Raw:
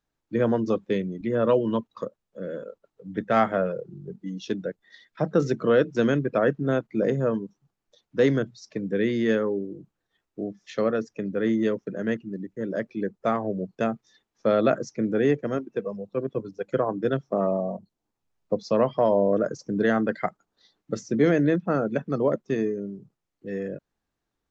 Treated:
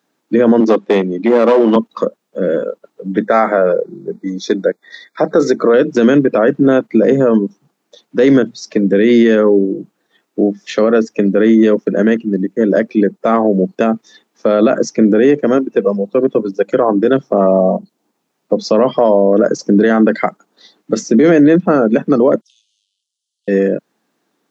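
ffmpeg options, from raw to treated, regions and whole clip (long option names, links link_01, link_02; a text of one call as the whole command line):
ffmpeg -i in.wav -filter_complex "[0:a]asettb=1/sr,asplit=3[link_01][link_02][link_03];[link_01]atrim=end=0.604[link_04];[link_02]atrim=start=0.6:end=1.76,asetpts=PTS-STARTPTS,afade=type=in:duration=0.004:curve=qsin,afade=type=out:start_time=1.156:duration=0.004:curve=qsin,aeval=exprs='clip(val(0),-1,0.0631)':channel_layout=same,highpass=250,lowpass=6400[link_05];[link_03]atrim=start=1.756[link_06];[link_04][link_05]acrossfade=duration=0.004:curve1=hsin:curve2=qsin[link_07];[link_07][link_06]acrossfade=duration=0.004:curve1=qsin:curve2=hsin,asettb=1/sr,asplit=3[link_08][link_09][link_10];[link_08]atrim=end=3.264[link_11];[link_09]atrim=start=3.26:end=5.74,asetpts=PTS-STARTPTS,afade=type=in:duration=0.004:curve=qsin,afade=type=out:start_time=2.476:duration=0.004:curve=qsin,asuperstop=centerf=2900:order=20:qfactor=3,bass=frequency=250:gain=-10,treble=frequency=4000:gain=-1[link_12];[link_10]atrim=start=5.736[link_13];[link_11][link_12]acrossfade=duration=0.004:curve1=hsin:curve2=qsin[link_14];[link_14][link_13]acrossfade=duration=0.004:curve1=qsin:curve2=hsin,asettb=1/sr,asplit=3[link_15][link_16][link_17];[link_15]atrim=end=22.414[link_18];[link_16]atrim=start=22.41:end=23.48,asetpts=PTS-STARTPTS,afade=type=in:duration=0.004:curve=qsin,afade=type=out:start_time=1.066:duration=0.004:curve=qsin,aeval=exprs='if(lt(val(0),0),0.251*val(0),val(0))':channel_layout=same,acompressor=threshold=-40dB:ratio=10:attack=3.2:release=140:knee=1:detection=peak,asuperpass=centerf=5900:order=20:qfactor=0.78[link_19];[link_17]atrim=start=23.476[link_20];[link_18][link_19]acrossfade=duration=0.004:curve1=hsin:curve2=qsin[link_21];[link_21][link_20]acrossfade=duration=0.004:curve1=qsin:curve2=hsin,highpass=frequency=200:width=0.5412,highpass=frequency=200:width=1.3066,lowshelf=frequency=450:gain=4.5,alimiter=level_in=17.5dB:limit=-1dB:release=50:level=0:latency=1,volume=-1dB" out.wav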